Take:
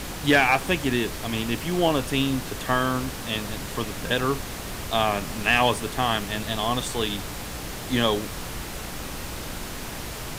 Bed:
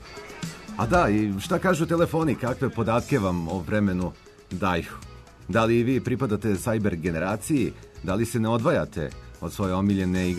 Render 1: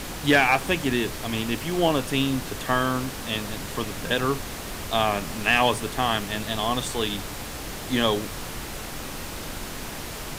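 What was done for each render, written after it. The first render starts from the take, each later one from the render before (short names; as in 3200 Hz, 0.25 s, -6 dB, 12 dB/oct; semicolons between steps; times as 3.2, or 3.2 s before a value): de-hum 60 Hz, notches 3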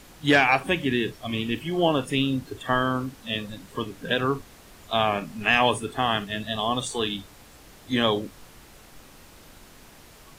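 noise print and reduce 15 dB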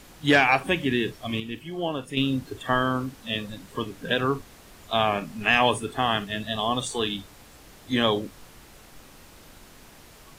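1.4–2.17 gain -7 dB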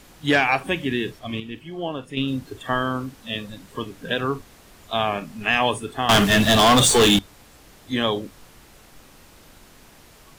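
1.19–2.28 high shelf 6400 Hz -8 dB; 6.09–7.19 sample leveller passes 5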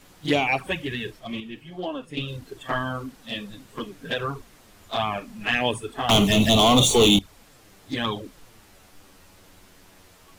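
envelope flanger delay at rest 11.9 ms, full sweep at -14.5 dBFS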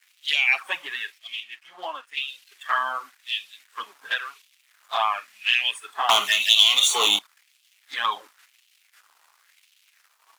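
crossover distortion -51 dBFS; LFO high-pass sine 0.95 Hz 970–2900 Hz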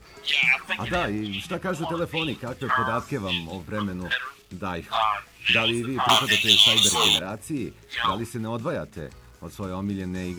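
add bed -6.5 dB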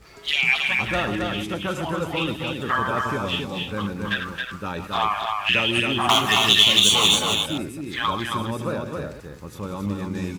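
reverse delay 0.116 s, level -9 dB; echo 0.271 s -4 dB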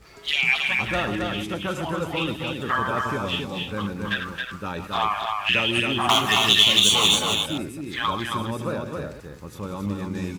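gain -1 dB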